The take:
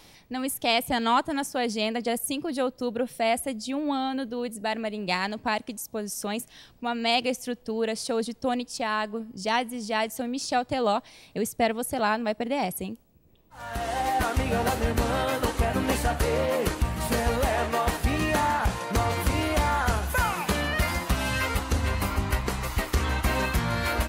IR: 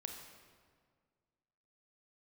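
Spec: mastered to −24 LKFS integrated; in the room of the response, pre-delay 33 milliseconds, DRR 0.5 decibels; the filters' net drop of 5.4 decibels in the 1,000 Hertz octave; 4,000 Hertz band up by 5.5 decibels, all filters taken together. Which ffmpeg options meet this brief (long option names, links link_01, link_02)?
-filter_complex "[0:a]equalizer=frequency=1000:width_type=o:gain=-8,equalizer=frequency=4000:width_type=o:gain=7.5,asplit=2[link_01][link_02];[1:a]atrim=start_sample=2205,adelay=33[link_03];[link_02][link_03]afir=irnorm=-1:irlink=0,volume=2dB[link_04];[link_01][link_04]amix=inputs=2:normalize=0,volume=0.5dB"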